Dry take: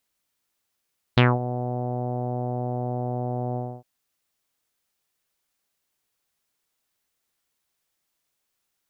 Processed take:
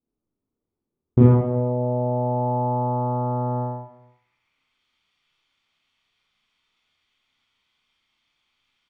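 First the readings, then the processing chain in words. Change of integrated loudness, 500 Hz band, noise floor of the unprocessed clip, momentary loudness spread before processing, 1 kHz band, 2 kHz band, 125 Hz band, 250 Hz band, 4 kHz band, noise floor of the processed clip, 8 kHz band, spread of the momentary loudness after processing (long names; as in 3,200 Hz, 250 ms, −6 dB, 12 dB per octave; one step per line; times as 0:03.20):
+5.0 dB, +5.5 dB, −78 dBFS, 9 LU, +4.5 dB, below −15 dB, +5.5 dB, +6.5 dB, below −20 dB, −84 dBFS, can't be measured, 10 LU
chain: low-shelf EQ 350 Hz +8.5 dB
comb filter 0.9 ms, depth 39%
slap from a distant wall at 57 metres, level −24 dB
four-comb reverb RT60 0.71 s, combs from 26 ms, DRR −5.5 dB
low-pass filter sweep 390 Hz → 3,100 Hz, 0:01.15–0:04.86
tilt shelving filter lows −4.5 dB, about 660 Hz
level −3.5 dB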